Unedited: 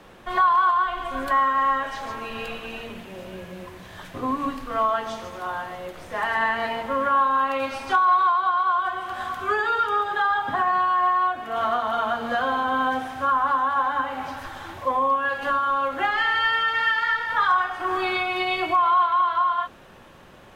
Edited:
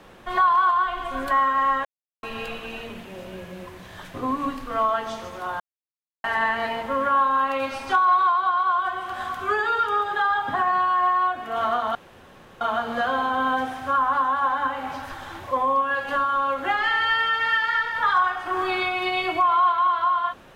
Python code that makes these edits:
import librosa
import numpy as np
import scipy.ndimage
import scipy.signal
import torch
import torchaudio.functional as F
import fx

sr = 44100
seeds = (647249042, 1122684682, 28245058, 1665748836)

y = fx.edit(x, sr, fx.silence(start_s=1.85, length_s=0.38),
    fx.silence(start_s=5.6, length_s=0.64),
    fx.insert_room_tone(at_s=11.95, length_s=0.66), tone=tone)